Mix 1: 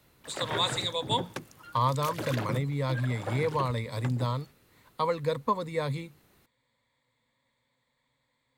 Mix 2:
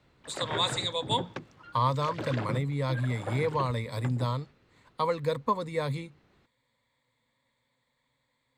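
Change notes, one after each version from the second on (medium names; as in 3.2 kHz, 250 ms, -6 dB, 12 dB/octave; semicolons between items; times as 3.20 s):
background: add distance through air 160 m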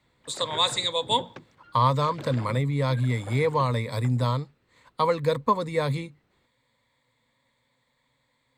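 speech +5.0 dB; background -5.0 dB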